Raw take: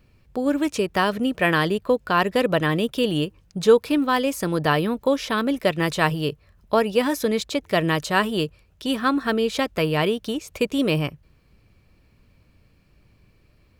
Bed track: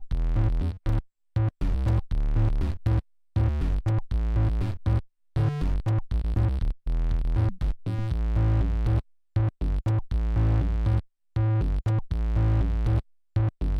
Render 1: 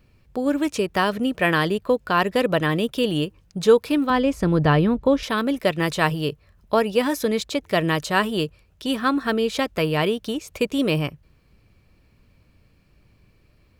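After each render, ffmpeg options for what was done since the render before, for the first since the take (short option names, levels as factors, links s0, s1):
-filter_complex "[0:a]asettb=1/sr,asplit=3[s0][s1][s2];[s0]atrim=end=4.104[s3];[s1]atrim=start=4.1:end=5.23,asetpts=PTS-STARTPTS,afade=t=in:d=0.004:c=qsin,afade=t=out:st=1.126:d=0.004:c=qsin,aemphasis=mode=reproduction:type=bsi[s4];[s2]atrim=start=5.226[s5];[s3][s4]acrossfade=d=0.004:c1=hsin:c2=qsin[s6];[s6][s5]acrossfade=d=0.004:c1=qsin:c2=hsin"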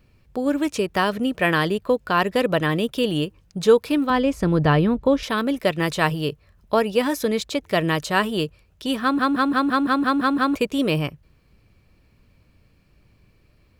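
-filter_complex "[0:a]asplit=10[s0][s1][s2][s3][s4][s5][s6][s7][s8][s9];[s0]atrim=end=9.192[s10];[s1]atrim=start=9.018:end=9.192[s11];[s2]atrim=start=9.018:end=9.192[s12];[s3]atrim=start=9.018:end=9.192[s13];[s4]atrim=start=9.018:end=9.192[s14];[s5]atrim=start=9.018:end=9.192[s15];[s6]atrim=start=9.018:end=9.192[s16];[s7]atrim=start=9.018:end=9.192[s17];[s8]atrim=start=9.018:end=9.192[s18];[s9]atrim=start=10.548[s19];[s10][s11]acrossfade=d=0.004:c1=hsin:c2=hsin[s20];[s20][s12]acrossfade=d=0.004:c1=hsin:c2=hsin[s21];[s21][s13]acrossfade=d=0.004:c1=hsin:c2=hsin[s22];[s22][s14]acrossfade=d=0.004:c1=hsin:c2=hsin[s23];[s23][s15]acrossfade=d=0.004:c1=hsin:c2=hsin[s24];[s24][s16]acrossfade=d=0.004:c1=hsin:c2=hsin[s25];[s25][s17]acrossfade=d=0.004:c1=hsin:c2=hsin[s26];[s26][s18]acrossfade=d=0.004:c1=hsin:c2=hsin[s27];[s27][s19]acrossfade=d=0.004:c1=hsin:c2=hsin"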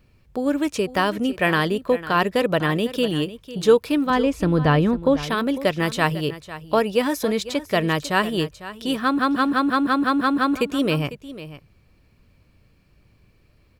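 -af "aecho=1:1:500:0.178"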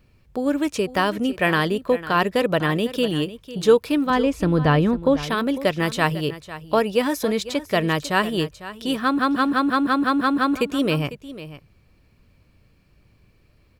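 -af anull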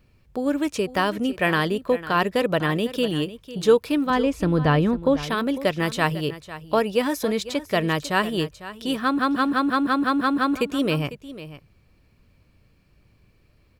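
-af "volume=0.841"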